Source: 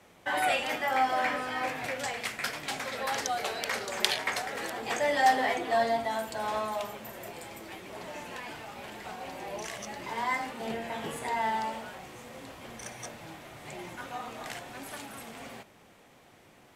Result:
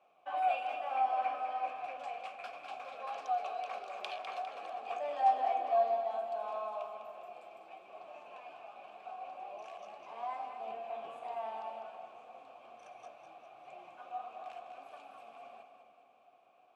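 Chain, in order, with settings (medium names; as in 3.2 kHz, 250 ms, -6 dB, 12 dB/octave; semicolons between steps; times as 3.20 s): vowel filter a; two-band feedback delay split 730 Hz, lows 297 ms, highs 202 ms, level -8 dB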